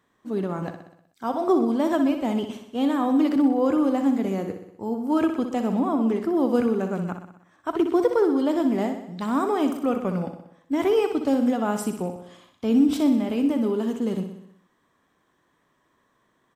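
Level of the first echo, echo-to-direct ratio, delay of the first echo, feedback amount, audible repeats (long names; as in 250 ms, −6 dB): −8.5 dB, −6.5 dB, 62 ms, 58%, 6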